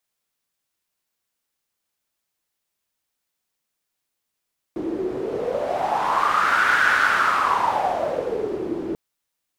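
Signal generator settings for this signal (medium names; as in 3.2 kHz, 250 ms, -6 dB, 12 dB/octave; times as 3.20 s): wind-like swept noise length 4.19 s, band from 340 Hz, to 1.5 kHz, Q 6.5, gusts 1, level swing 10 dB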